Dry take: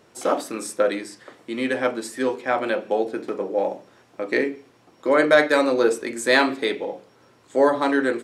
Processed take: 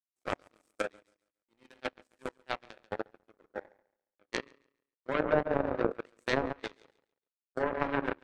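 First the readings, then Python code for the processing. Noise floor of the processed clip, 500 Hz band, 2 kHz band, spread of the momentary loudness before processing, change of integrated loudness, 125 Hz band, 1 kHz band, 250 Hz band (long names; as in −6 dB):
below −85 dBFS, −14.0 dB, −14.5 dB, 15 LU, −13.0 dB, 0.0 dB, −11.5 dB, −13.5 dB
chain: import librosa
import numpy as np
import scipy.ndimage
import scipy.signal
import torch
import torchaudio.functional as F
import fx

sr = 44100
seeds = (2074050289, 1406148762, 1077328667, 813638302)

p1 = fx.echo_feedback(x, sr, ms=139, feedback_pct=54, wet_db=-5.0)
p2 = fx.level_steps(p1, sr, step_db=20)
p3 = p1 + F.gain(torch.from_numpy(p2), 1.0).numpy()
p4 = fx.power_curve(p3, sr, exponent=3.0)
p5 = fx.env_lowpass_down(p4, sr, base_hz=840.0, full_db=-19.5)
y = F.gain(torch.from_numpy(p5), -4.0).numpy()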